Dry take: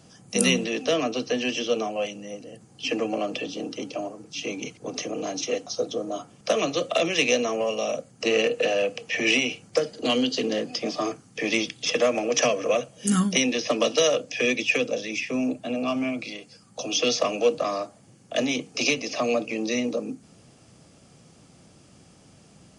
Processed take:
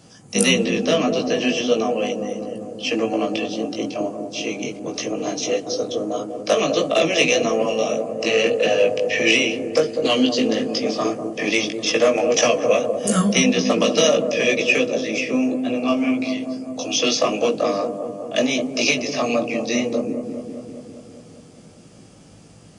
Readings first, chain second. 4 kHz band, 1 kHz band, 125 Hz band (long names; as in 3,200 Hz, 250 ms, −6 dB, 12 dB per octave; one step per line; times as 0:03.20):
+4.5 dB, +5.0 dB, +5.5 dB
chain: chorus effect 1.6 Hz, delay 17.5 ms, depth 2.4 ms
delay with a low-pass on its return 199 ms, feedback 68%, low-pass 680 Hz, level −5 dB
level +7.5 dB